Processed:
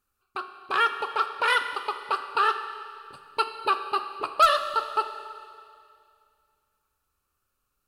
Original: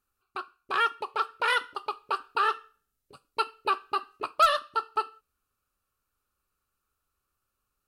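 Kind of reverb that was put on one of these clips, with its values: Schroeder reverb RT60 2.3 s, combs from 31 ms, DRR 8.5 dB; gain +2.5 dB

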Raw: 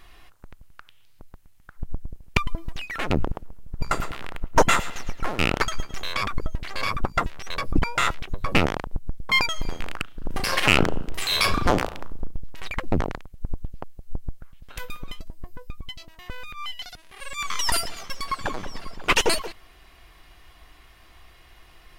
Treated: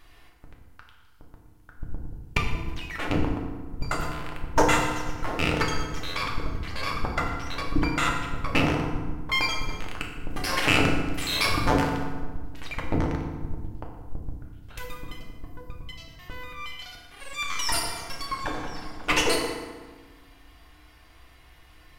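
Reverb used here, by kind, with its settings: FDN reverb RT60 1.4 s, low-frequency decay 1.4×, high-frequency decay 0.65×, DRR -0.5 dB; gain -5 dB

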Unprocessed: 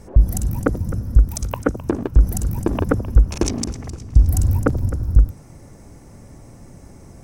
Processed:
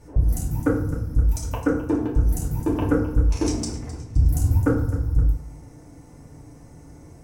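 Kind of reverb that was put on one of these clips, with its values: FDN reverb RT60 0.61 s, low-frequency decay 1×, high-frequency decay 0.65×, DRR -5.5 dB; gain -10 dB

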